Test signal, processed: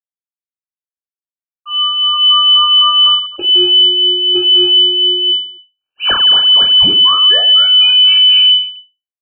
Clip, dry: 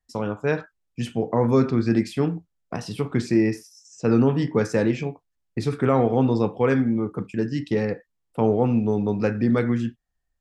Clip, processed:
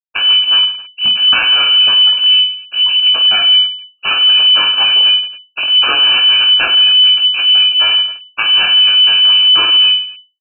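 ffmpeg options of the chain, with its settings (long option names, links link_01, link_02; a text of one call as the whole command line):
ffmpeg -i in.wav -filter_complex "[0:a]aemphasis=mode=production:type=75kf,afftfilt=real='re*gte(hypot(re,im),0.112)':imag='im*gte(hypot(re,im),0.112)':win_size=1024:overlap=0.75,adynamicequalizer=threshold=0.0224:dfrequency=820:dqfactor=0.72:tfrequency=820:tqfactor=0.72:attack=5:release=100:ratio=0.375:range=2:mode=boostabove:tftype=bell,acompressor=threshold=-25dB:ratio=2,aresample=11025,aeval=exprs='abs(val(0))':channel_layout=same,aresample=44100,acrossover=split=420[link_01][link_02];[link_01]aeval=exprs='val(0)*(1-0.7/2+0.7/2*cos(2*PI*4*n/s))':channel_layout=same[link_03];[link_02]aeval=exprs='val(0)*(1-0.7/2-0.7/2*cos(2*PI*4*n/s))':channel_layout=same[link_04];[link_03][link_04]amix=inputs=2:normalize=0,aeval=exprs='0.15*(cos(1*acos(clip(val(0)/0.15,-1,1)))-cos(1*PI/2))+0.00668*(cos(4*acos(clip(val(0)/0.15,-1,1)))-cos(4*PI/2))+0.0075*(cos(5*acos(clip(val(0)/0.15,-1,1)))-cos(5*PI/2))':channel_layout=same,aeval=exprs='clip(val(0),-1,0.0126)':channel_layout=same,asuperstop=centerf=960:order=20:qfactor=1.8,asplit=2[link_05][link_06];[link_06]aecho=0:1:20|50|95|162.5|263.8:0.631|0.398|0.251|0.158|0.1[link_07];[link_05][link_07]amix=inputs=2:normalize=0,lowpass=frequency=2600:width_type=q:width=0.5098,lowpass=frequency=2600:width_type=q:width=0.6013,lowpass=frequency=2600:width_type=q:width=0.9,lowpass=frequency=2600:width_type=q:width=2.563,afreqshift=-3000,alimiter=level_in=26.5dB:limit=-1dB:release=50:level=0:latency=1,volume=-2dB" out.wav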